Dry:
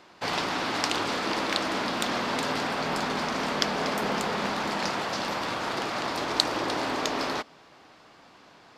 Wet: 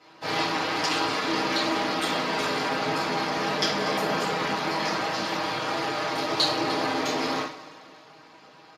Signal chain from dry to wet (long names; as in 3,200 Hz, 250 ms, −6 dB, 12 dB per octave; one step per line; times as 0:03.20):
comb filter 6.4 ms, depth 65%
coupled-rooms reverb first 0.42 s, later 2.6 s, from −20 dB, DRR −8.5 dB
level −8 dB
Speex 36 kbit/s 32,000 Hz